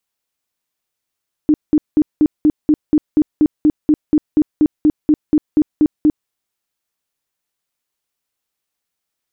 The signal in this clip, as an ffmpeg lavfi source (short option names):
-f lavfi -i "aevalsrc='0.422*sin(2*PI*303*mod(t,0.24))*lt(mod(t,0.24),15/303)':d=4.8:s=44100"